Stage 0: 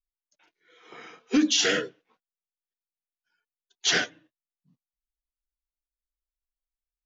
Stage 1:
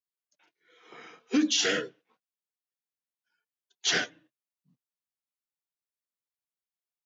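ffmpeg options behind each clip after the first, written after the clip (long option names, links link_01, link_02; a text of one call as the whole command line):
ffmpeg -i in.wav -af "highpass=frequency=100:width=0.5412,highpass=frequency=100:width=1.3066,volume=-3dB" out.wav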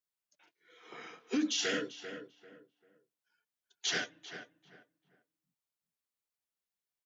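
ffmpeg -i in.wav -filter_complex "[0:a]alimiter=limit=-23dB:level=0:latency=1:release=428,asplit=2[link_01][link_02];[link_02]adelay=393,lowpass=frequency=1800:poles=1,volume=-9dB,asplit=2[link_03][link_04];[link_04]adelay=393,lowpass=frequency=1800:poles=1,volume=0.28,asplit=2[link_05][link_06];[link_06]adelay=393,lowpass=frequency=1800:poles=1,volume=0.28[link_07];[link_01][link_03][link_05][link_07]amix=inputs=4:normalize=0" out.wav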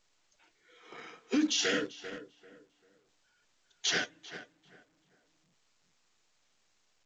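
ffmpeg -i in.wav -filter_complex "[0:a]asplit=2[link_01][link_02];[link_02]aeval=exprs='val(0)*gte(abs(val(0)),0.0112)':channel_layout=same,volume=-7dB[link_03];[link_01][link_03]amix=inputs=2:normalize=0" -ar 16000 -c:a pcm_alaw out.wav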